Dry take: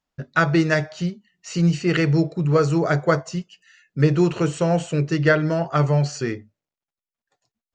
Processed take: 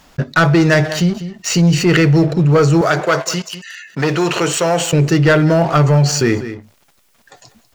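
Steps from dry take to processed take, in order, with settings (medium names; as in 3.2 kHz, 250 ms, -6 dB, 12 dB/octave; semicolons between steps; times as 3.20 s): waveshaping leveller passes 2; 2.81–4.93 s: high-pass 820 Hz 6 dB/octave; delay 196 ms -23.5 dB; level flattener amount 50%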